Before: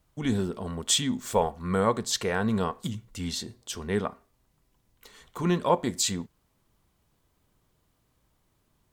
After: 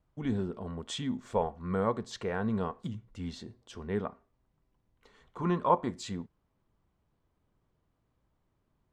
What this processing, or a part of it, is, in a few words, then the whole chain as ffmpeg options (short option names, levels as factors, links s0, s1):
through cloth: -filter_complex "[0:a]asettb=1/sr,asplit=3[s0][s1][s2];[s0]atrim=end=5.404[s3];[s1]atrim=start=5.4:end=5.94,asetpts=PTS-STARTPTS,afade=t=in:d=0.004:c=qsin,afade=t=out:st=0.536:d=0.004:c=qsin,equalizer=f=1100:w=2:g=8.5[s4];[s2]atrim=start=5.936[s5];[s3][s4]acrossfade=d=0.004:c1=hsin:c2=qsin[s6];[s6][s5]acrossfade=d=0.004:c1=qsin:c2=hsin,lowpass=8300,highshelf=f=3100:g=-15.5,volume=0.596"